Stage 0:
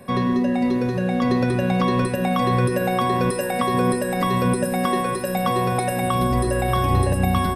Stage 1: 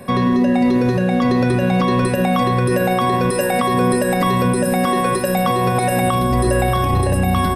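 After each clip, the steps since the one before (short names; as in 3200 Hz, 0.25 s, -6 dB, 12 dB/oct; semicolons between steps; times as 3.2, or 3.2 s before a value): limiter -15 dBFS, peak gain reduction 7.5 dB; gain +7 dB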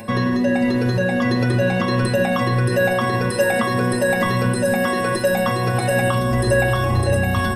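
upward compressor, threshold -35 dBFS; metallic resonator 110 Hz, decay 0.2 s, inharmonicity 0.002; gain +8.5 dB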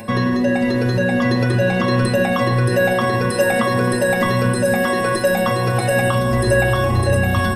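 echo with dull and thin repeats by turns 0.262 s, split 1100 Hz, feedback 57%, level -13.5 dB; gain +1.5 dB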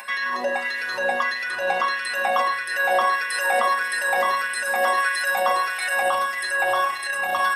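limiter -12.5 dBFS, peak gain reduction 8 dB; LFO high-pass sine 1.6 Hz 740–1900 Hz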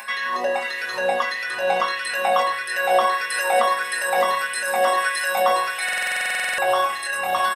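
doubler 22 ms -5 dB; stuck buffer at 5.84, samples 2048, times 15; gain +1.5 dB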